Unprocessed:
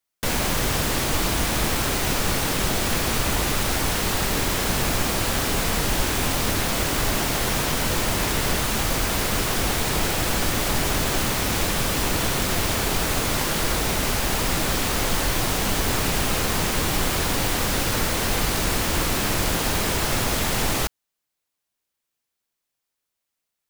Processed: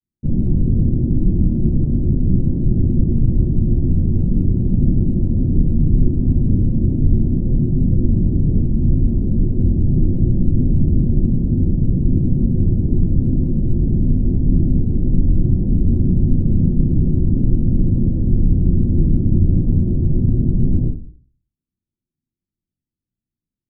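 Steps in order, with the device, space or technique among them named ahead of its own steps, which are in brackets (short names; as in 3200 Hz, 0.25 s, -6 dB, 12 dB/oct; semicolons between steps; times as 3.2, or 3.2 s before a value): next room (LPF 270 Hz 24 dB/oct; reverb RT60 0.45 s, pre-delay 7 ms, DRR -9 dB)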